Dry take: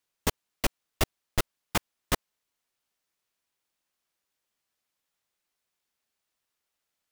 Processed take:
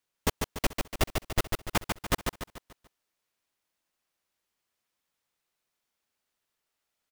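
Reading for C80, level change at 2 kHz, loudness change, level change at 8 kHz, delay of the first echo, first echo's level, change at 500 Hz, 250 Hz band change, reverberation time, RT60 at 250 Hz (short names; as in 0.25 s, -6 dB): none, +0.5 dB, +0.5 dB, -0.5 dB, 0.145 s, -4.5 dB, +1.5 dB, +1.5 dB, none, none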